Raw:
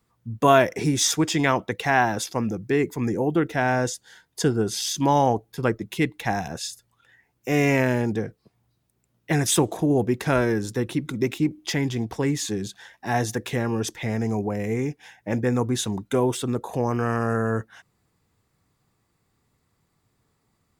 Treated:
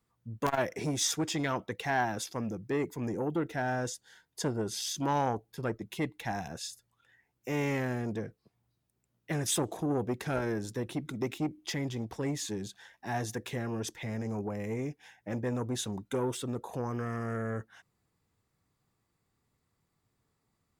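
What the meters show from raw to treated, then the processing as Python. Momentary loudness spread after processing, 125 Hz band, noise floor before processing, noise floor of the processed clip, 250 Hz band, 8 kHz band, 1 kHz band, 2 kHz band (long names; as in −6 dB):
9 LU, −9.5 dB, −72 dBFS, −79 dBFS, −10.0 dB, −8.0 dB, −10.0 dB, −10.5 dB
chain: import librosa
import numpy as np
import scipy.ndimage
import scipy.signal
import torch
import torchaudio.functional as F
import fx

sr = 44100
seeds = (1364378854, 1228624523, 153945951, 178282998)

y = (np.mod(10.0 ** (5.5 / 20.0) * x + 1.0, 2.0) - 1.0) / 10.0 ** (5.5 / 20.0)
y = fx.transformer_sat(y, sr, knee_hz=800.0)
y = F.gain(torch.from_numpy(y), -8.0).numpy()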